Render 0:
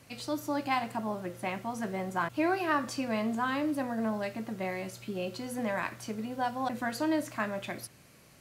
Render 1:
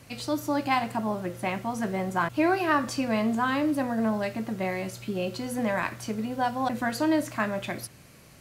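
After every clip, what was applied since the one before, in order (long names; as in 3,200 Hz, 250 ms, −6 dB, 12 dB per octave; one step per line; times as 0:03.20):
low-shelf EQ 110 Hz +6 dB
level +4.5 dB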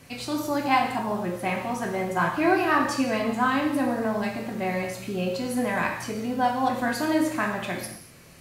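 convolution reverb, pre-delay 3 ms, DRR 0 dB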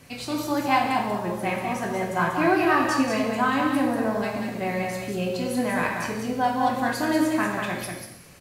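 single-tap delay 190 ms −5 dB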